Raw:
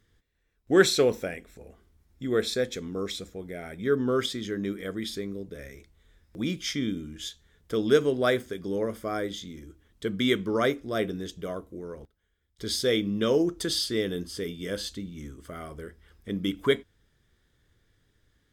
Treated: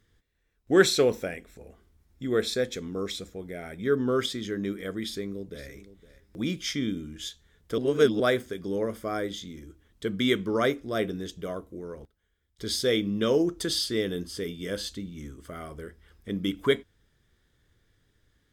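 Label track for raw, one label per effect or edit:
5.020000	5.690000	delay throw 510 ms, feedback 10%, level −16 dB
7.780000	8.200000	reverse

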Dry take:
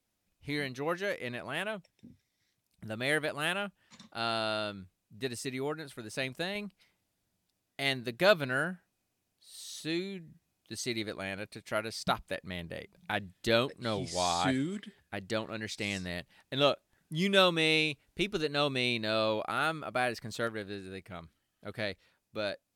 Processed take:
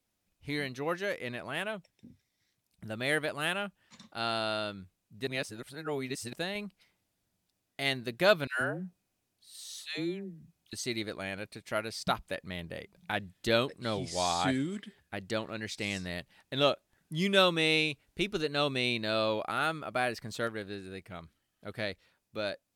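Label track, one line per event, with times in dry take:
5.270000	6.330000	reverse
8.470000	10.730000	all-pass dispersion lows, late by 140 ms, half as late at 690 Hz

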